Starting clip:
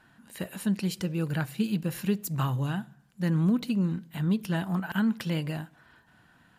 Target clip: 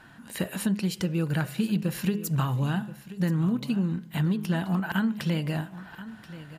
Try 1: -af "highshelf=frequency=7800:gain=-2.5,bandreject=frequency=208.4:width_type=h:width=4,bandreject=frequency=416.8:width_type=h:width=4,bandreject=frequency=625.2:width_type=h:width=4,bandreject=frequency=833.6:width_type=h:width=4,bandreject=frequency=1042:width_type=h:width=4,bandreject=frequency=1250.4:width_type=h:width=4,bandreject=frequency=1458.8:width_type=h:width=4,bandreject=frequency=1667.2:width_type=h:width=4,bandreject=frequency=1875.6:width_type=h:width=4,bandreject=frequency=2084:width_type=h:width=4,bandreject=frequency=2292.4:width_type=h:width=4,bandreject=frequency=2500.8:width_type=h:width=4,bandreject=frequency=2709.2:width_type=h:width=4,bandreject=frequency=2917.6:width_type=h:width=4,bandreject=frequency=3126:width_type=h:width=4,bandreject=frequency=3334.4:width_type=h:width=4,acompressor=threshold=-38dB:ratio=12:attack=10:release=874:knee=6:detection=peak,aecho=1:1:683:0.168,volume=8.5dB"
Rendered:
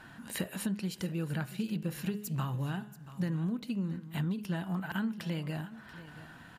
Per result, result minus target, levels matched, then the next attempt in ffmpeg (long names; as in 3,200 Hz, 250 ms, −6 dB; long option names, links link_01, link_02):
downward compressor: peak gain reduction +8 dB; echo 347 ms early
-af "highshelf=frequency=7800:gain=-2.5,bandreject=frequency=208.4:width_type=h:width=4,bandreject=frequency=416.8:width_type=h:width=4,bandreject=frequency=625.2:width_type=h:width=4,bandreject=frequency=833.6:width_type=h:width=4,bandreject=frequency=1042:width_type=h:width=4,bandreject=frequency=1250.4:width_type=h:width=4,bandreject=frequency=1458.8:width_type=h:width=4,bandreject=frequency=1667.2:width_type=h:width=4,bandreject=frequency=1875.6:width_type=h:width=4,bandreject=frequency=2084:width_type=h:width=4,bandreject=frequency=2292.4:width_type=h:width=4,bandreject=frequency=2500.8:width_type=h:width=4,bandreject=frequency=2709.2:width_type=h:width=4,bandreject=frequency=2917.6:width_type=h:width=4,bandreject=frequency=3126:width_type=h:width=4,bandreject=frequency=3334.4:width_type=h:width=4,acompressor=threshold=-29.5dB:ratio=12:attack=10:release=874:knee=6:detection=peak,aecho=1:1:683:0.168,volume=8.5dB"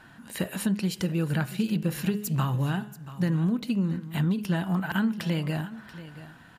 echo 347 ms early
-af "highshelf=frequency=7800:gain=-2.5,bandreject=frequency=208.4:width_type=h:width=4,bandreject=frequency=416.8:width_type=h:width=4,bandreject=frequency=625.2:width_type=h:width=4,bandreject=frequency=833.6:width_type=h:width=4,bandreject=frequency=1042:width_type=h:width=4,bandreject=frequency=1250.4:width_type=h:width=4,bandreject=frequency=1458.8:width_type=h:width=4,bandreject=frequency=1667.2:width_type=h:width=4,bandreject=frequency=1875.6:width_type=h:width=4,bandreject=frequency=2084:width_type=h:width=4,bandreject=frequency=2292.4:width_type=h:width=4,bandreject=frequency=2500.8:width_type=h:width=4,bandreject=frequency=2709.2:width_type=h:width=4,bandreject=frequency=2917.6:width_type=h:width=4,bandreject=frequency=3126:width_type=h:width=4,bandreject=frequency=3334.4:width_type=h:width=4,acompressor=threshold=-29.5dB:ratio=12:attack=10:release=874:knee=6:detection=peak,aecho=1:1:1030:0.168,volume=8.5dB"